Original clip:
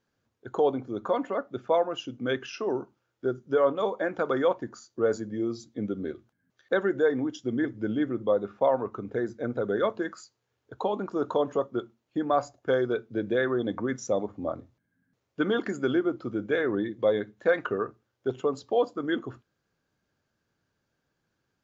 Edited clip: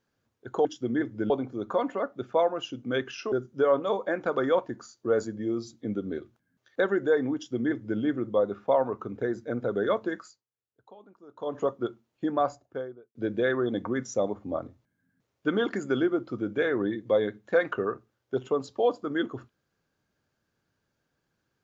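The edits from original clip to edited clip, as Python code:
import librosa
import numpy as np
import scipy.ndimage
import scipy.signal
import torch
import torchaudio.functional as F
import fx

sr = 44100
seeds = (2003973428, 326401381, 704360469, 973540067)

y = fx.studio_fade_out(x, sr, start_s=12.19, length_s=0.89)
y = fx.edit(y, sr, fx.cut(start_s=2.67, length_s=0.58),
    fx.duplicate(start_s=7.28, length_s=0.65, to_s=0.65),
    fx.fade_down_up(start_s=10.09, length_s=1.48, db=-22.5, fade_s=0.28), tone=tone)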